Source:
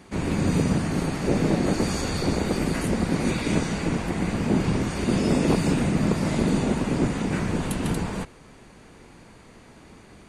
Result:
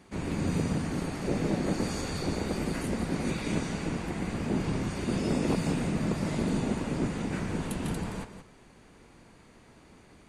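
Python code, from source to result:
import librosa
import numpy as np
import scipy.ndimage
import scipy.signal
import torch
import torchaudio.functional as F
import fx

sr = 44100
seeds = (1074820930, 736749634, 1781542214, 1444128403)

y = x + 10.0 ** (-10.0 / 20.0) * np.pad(x, (int(173 * sr / 1000.0), 0))[:len(x)]
y = F.gain(torch.from_numpy(y), -7.0).numpy()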